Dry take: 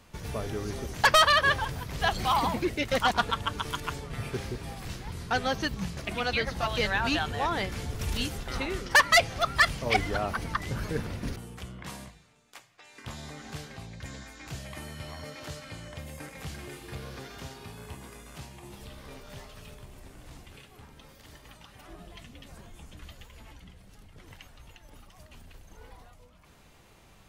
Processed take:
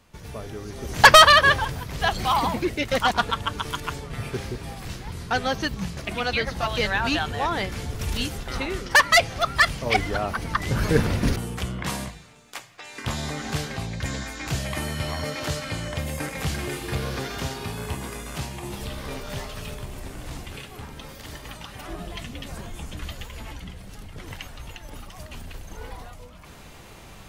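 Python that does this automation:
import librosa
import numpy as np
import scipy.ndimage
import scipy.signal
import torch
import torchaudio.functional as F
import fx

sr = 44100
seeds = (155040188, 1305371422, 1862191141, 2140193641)

y = fx.gain(x, sr, db=fx.line((0.74, -2.0), (1.02, 10.5), (1.82, 3.5), (10.42, 3.5), (10.95, 12.0)))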